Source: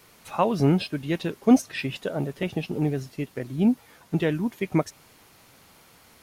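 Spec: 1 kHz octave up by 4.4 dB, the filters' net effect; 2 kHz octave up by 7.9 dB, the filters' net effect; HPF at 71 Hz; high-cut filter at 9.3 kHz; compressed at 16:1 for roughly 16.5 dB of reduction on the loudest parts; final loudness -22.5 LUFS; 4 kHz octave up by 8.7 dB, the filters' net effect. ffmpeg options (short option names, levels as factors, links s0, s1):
-af "highpass=71,lowpass=9300,equalizer=f=1000:t=o:g=4,equalizer=f=2000:t=o:g=6,equalizer=f=4000:t=o:g=9,acompressor=threshold=0.0398:ratio=16,volume=3.76"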